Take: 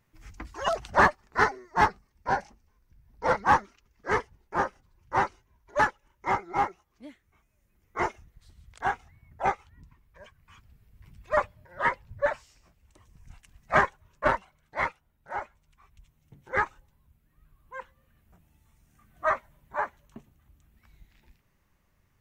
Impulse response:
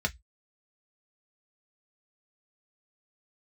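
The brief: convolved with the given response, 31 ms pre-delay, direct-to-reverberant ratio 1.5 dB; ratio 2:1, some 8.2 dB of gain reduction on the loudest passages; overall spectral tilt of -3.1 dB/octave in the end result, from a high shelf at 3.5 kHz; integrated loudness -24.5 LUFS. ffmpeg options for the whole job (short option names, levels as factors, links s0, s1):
-filter_complex "[0:a]highshelf=f=3500:g=4.5,acompressor=threshold=0.0316:ratio=2,asplit=2[s0][s1];[1:a]atrim=start_sample=2205,adelay=31[s2];[s1][s2]afir=irnorm=-1:irlink=0,volume=0.376[s3];[s0][s3]amix=inputs=2:normalize=0,volume=2.37"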